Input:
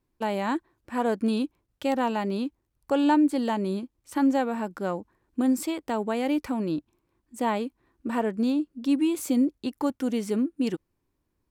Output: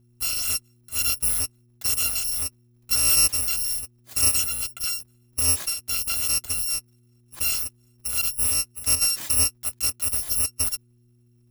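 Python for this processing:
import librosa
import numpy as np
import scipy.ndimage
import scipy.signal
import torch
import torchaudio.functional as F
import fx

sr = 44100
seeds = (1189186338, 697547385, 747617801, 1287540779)

y = fx.bit_reversed(x, sr, seeds[0], block=256)
y = fx.dmg_buzz(y, sr, base_hz=120.0, harmonics=3, level_db=-61.0, tilt_db=-8, odd_only=False)
y = y * librosa.db_to_amplitude(1.5)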